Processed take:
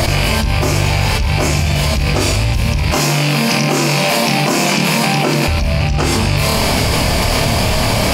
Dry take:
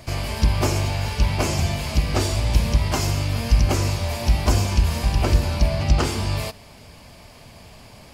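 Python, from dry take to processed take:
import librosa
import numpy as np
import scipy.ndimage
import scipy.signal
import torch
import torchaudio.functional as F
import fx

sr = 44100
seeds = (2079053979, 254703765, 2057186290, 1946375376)

y = fx.rattle_buzz(x, sr, strikes_db=-23.0, level_db=-20.0)
y = fx.ellip_highpass(y, sr, hz=150.0, order=4, stop_db=40, at=(2.91, 5.48))
y = fx.room_flutter(y, sr, wall_m=4.6, rt60_s=0.26)
y = fx.env_flatten(y, sr, amount_pct=100)
y = y * librosa.db_to_amplitude(-3.0)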